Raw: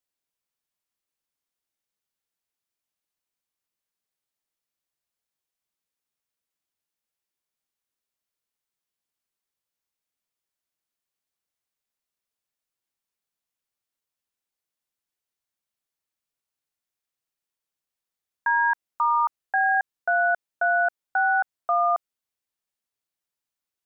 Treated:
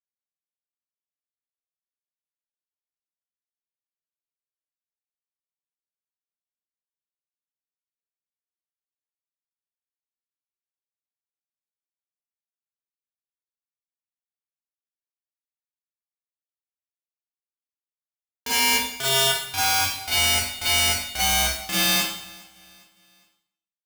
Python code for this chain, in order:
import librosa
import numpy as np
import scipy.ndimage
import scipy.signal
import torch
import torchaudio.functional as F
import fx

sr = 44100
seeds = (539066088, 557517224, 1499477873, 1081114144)

y = fx.lowpass(x, sr, hz=1100.0, slope=6)
y = fx.low_shelf(y, sr, hz=390.0, db=-9.0)
y = fx.power_curve(y, sr, exponent=2.0)
y = (np.mod(10.0 ** (22.5 / 20.0) * y + 1.0, 2.0) - 1.0) / 10.0 ** (22.5 / 20.0)
y = fx.echo_feedback(y, sr, ms=409, feedback_pct=42, wet_db=-23.5)
y = fx.rev_schroeder(y, sr, rt60_s=0.66, comb_ms=31, drr_db=-9.5)